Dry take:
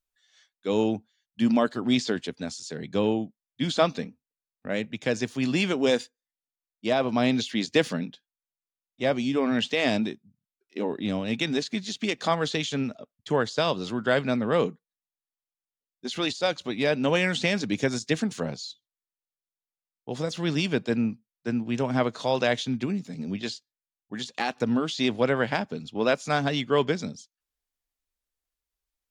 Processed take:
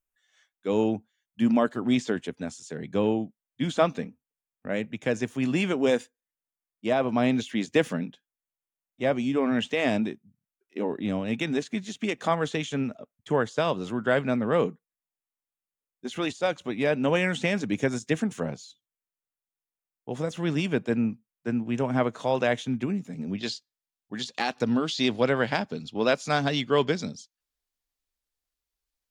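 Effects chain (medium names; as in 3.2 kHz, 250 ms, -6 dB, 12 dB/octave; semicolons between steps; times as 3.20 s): peaking EQ 4.5 kHz -12.5 dB 0.74 oct, from 23.38 s +2.5 dB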